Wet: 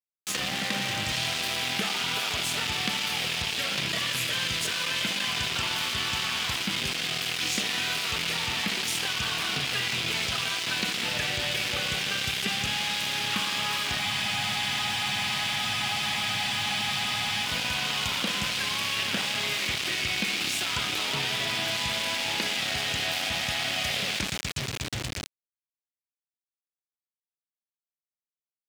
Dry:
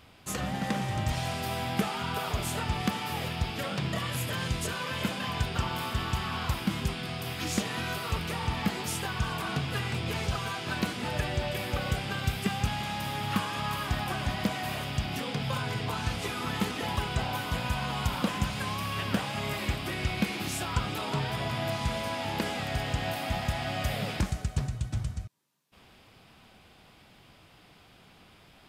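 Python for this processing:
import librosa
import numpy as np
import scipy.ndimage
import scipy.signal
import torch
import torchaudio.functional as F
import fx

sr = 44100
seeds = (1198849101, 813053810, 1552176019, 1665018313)

y = fx.rev_spring(x, sr, rt60_s=1.8, pass_ms=(55,), chirp_ms=40, drr_db=10.0)
y = np.where(np.abs(y) >= 10.0 ** (-32.5 / 20.0), y, 0.0)
y = fx.weighting(y, sr, curve='D')
y = fx.spec_freeze(y, sr, seeds[0], at_s=14.03, hold_s=3.43)
y = fx.env_flatten(y, sr, amount_pct=50)
y = y * 10.0 ** (-4.0 / 20.0)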